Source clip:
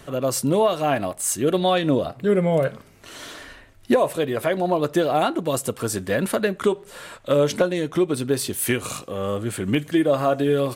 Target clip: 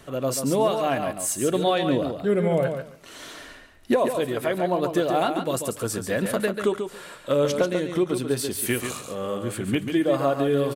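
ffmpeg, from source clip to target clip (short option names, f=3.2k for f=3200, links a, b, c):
-filter_complex "[0:a]bandreject=f=50:t=h:w=6,bandreject=f=100:t=h:w=6,bandreject=f=150:t=h:w=6,asplit=2[a][b];[b]aecho=0:1:140|280|420:0.447|0.0715|0.0114[c];[a][c]amix=inputs=2:normalize=0,volume=-3dB"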